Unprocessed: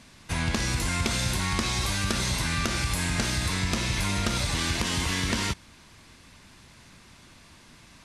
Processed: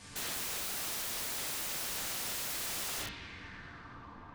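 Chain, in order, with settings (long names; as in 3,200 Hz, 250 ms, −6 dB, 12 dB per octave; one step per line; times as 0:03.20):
high-shelf EQ 9,400 Hz −4.5 dB
downward compressor 10 to 1, threshold −32 dBFS, peak gain reduction 11 dB
floating-point word with a short mantissa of 6 bits
low-pass filter sweep 9,100 Hz → 1,100 Hz, 0:03.52–0:07.50
phase-vocoder stretch with locked phases 0.54×
coupled-rooms reverb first 0.52 s, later 3 s, from −22 dB, DRR −5.5 dB
wrap-around overflow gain 30.5 dB
level −2.5 dB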